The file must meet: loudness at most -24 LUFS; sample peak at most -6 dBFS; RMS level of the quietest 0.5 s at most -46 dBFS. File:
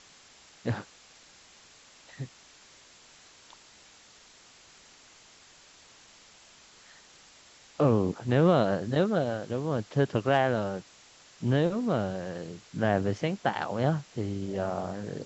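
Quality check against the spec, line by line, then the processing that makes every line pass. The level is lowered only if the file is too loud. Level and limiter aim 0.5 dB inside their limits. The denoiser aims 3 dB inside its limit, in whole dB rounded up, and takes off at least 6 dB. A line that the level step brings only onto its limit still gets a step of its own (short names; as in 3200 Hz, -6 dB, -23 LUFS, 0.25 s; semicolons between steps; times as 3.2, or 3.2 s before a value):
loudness -28.5 LUFS: OK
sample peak -10.5 dBFS: OK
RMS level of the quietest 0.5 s -56 dBFS: OK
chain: none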